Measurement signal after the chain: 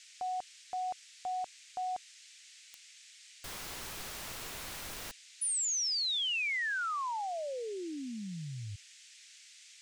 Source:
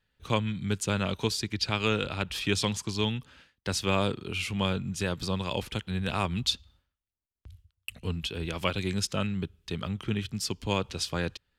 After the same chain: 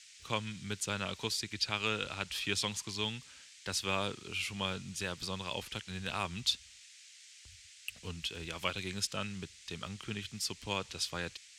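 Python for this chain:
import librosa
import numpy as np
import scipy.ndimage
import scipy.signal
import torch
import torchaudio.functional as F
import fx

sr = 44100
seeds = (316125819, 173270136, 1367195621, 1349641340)

y = fx.tilt_shelf(x, sr, db=-4.5, hz=720.0)
y = fx.dmg_noise_band(y, sr, seeds[0], low_hz=1900.0, high_hz=8100.0, level_db=-49.0)
y = y * 10.0 ** (-7.5 / 20.0)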